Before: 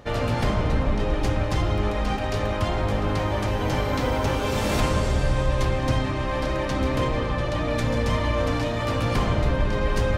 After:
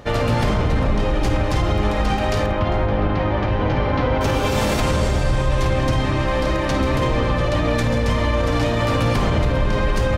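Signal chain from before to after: 2.46–4.21 air absorption 260 m; on a send: tapped delay 52/400 ms -10.5/-18.5 dB; on the sum: maximiser +15 dB; gain -9 dB

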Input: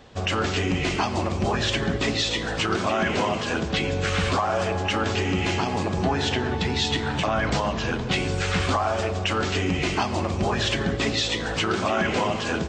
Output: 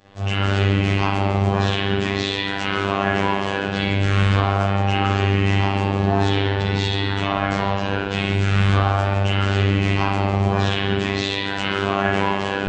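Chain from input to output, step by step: spring tank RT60 1.3 s, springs 31/43 ms, chirp 25 ms, DRR -9.5 dB; vibrato 0.35 Hz 26 cents; robotiser 98.6 Hz; gain -4.5 dB

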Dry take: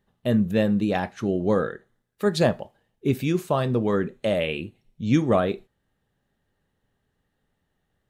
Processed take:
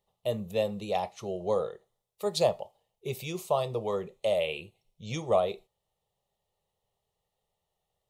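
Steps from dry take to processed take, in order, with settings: low shelf 270 Hz -11.5 dB; fixed phaser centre 660 Hz, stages 4

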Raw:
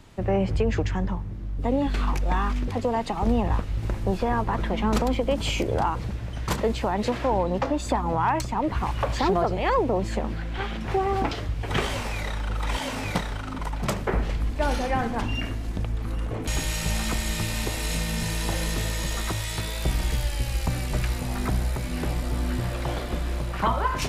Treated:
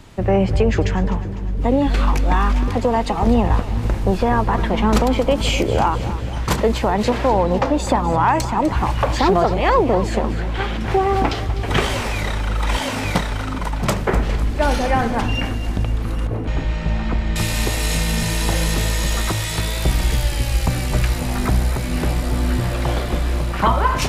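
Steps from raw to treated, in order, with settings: 16.27–17.36 tape spacing loss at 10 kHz 37 dB; split-band echo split 380 Hz, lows 0.464 s, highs 0.251 s, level -14 dB; gain +7 dB

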